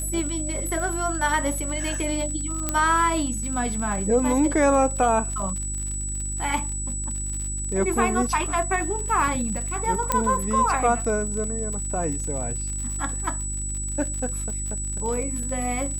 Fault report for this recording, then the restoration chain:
surface crackle 55 per second −30 dBFS
mains hum 50 Hz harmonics 7 −31 dBFS
whistle 7,900 Hz −30 dBFS
0:02.69: click −8 dBFS
0:10.12: click −6 dBFS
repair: click removal
hum removal 50 Hz, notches 7
notch filter 7,900 Hz, Q 30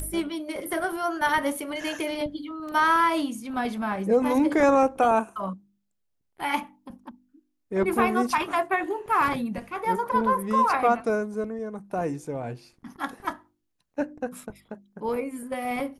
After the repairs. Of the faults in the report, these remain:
0:02.69: click

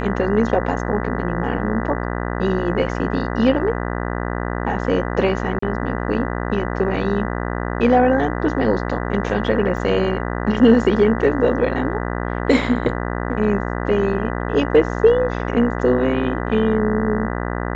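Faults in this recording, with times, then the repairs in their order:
mains buzz 60 Hz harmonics 33 −24 dBFS
0:05.59–0:05.62: drop-out 34 ms
0:09.77: drop-out 2.2 ms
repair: hum removal 60 Hz, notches 33
repair the gap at 0:05.59, 34 ms
repair the gap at 0:09.77, 2.2 ms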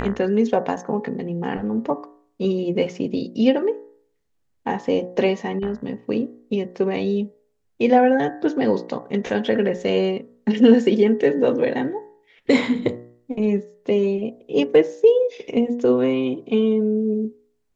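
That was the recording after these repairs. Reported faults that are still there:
none of them is left

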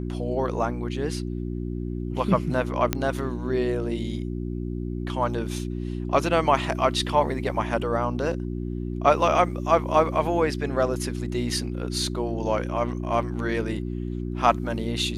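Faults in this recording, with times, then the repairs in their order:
mains hum 60 Hz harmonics 6 −30 dBFS
0:02.93: click −7 dBFS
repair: click removal
hum removal 60 Hz, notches 6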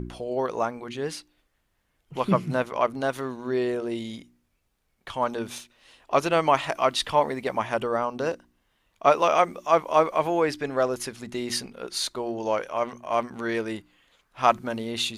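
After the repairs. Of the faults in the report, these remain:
none of them is left

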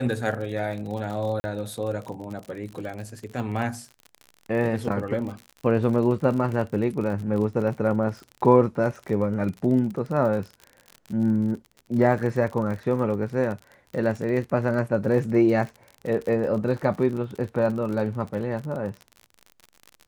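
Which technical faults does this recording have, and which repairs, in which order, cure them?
surface crackle 49 per second −32 dBFS
0:01.40–0:01.44: drop-out 40 ms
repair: click removal
repair the gap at 0:01.40, 40 ms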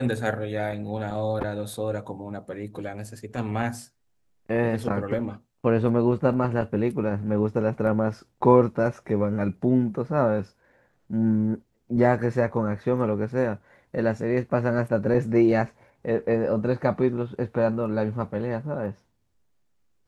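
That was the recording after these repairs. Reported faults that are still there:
none of them is left

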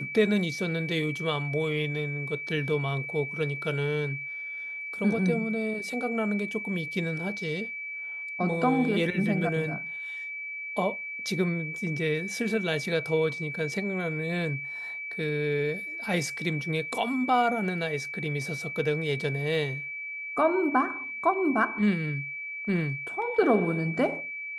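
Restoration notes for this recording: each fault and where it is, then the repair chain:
whistle 2,300 Hz −34 dBFS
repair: notch filter 2,300 Hz, Q 30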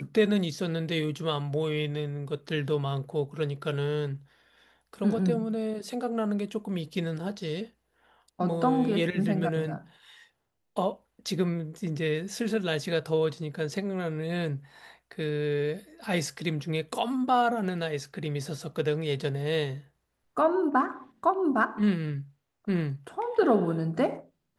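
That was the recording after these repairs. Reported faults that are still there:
none of them is left

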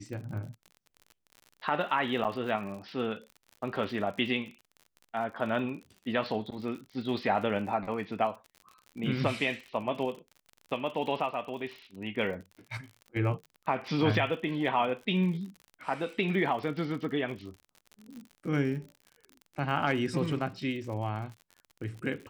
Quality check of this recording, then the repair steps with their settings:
surface crackle 57 per second −40 dBFS
0:02.24–0:02.25: drop-out 7.9 ms
0:18.16: click −34 dBFS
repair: click removal
repair the gap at 0:02.24, 7.9 ms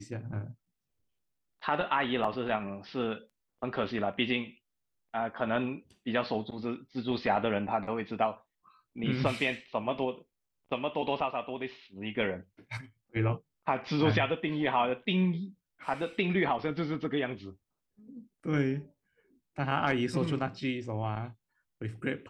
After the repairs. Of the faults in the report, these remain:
none of them is left

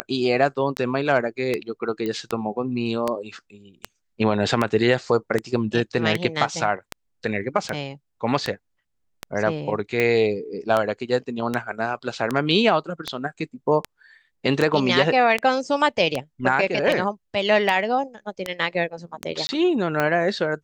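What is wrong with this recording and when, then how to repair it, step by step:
scratch tick 78 rpm −9 dBFS
0:02.06: click −16 dBFS
0:19.47–0:19.49: drop-out 20 ms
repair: click removal
repair the gap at 0:19.47, 20 ms

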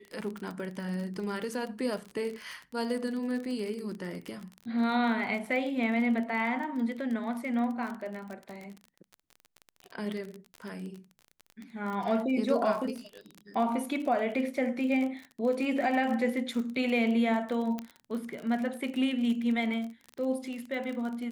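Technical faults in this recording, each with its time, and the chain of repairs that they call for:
surface crackle 34 per second −35 dBFS
0:17.79: click −21 dBFS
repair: click removal

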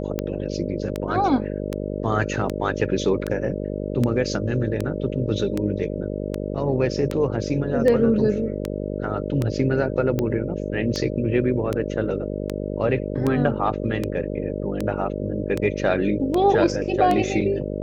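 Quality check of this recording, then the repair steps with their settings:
mains buzz 50 Hz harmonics 12 −28 dBFS
scratch tick 78 rpm −11 dBFS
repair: click removal
hum removal 50 Hz, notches 12

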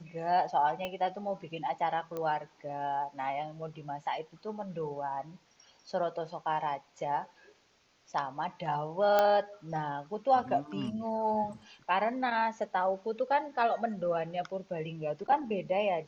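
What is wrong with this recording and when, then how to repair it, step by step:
0:00.85: click −22 dBFS
0:02.17: click −24 dBFS
0:09.19: click −13 dBFS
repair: click removal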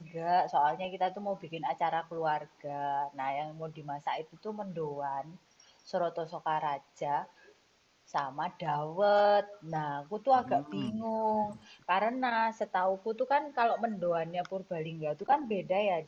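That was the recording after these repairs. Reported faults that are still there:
0:00.85: click
0:02.17: click

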